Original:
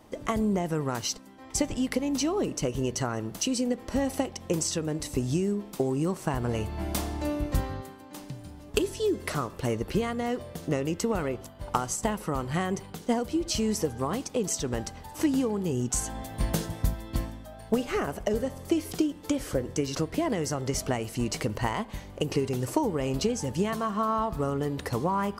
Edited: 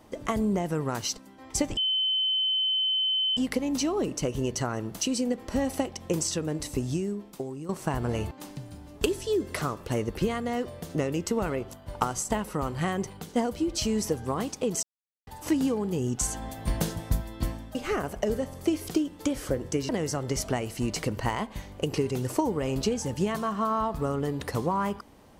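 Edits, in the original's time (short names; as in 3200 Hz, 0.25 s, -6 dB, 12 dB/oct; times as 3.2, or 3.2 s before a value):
1.77 add tone 3060 Hz -23 dBFS 1.60 s
5.04–6.09 fade out, to -13 dB
6.71–8.04 cut
14.56–15 mute
17.48–17.79 cut
19.93–20.27 cut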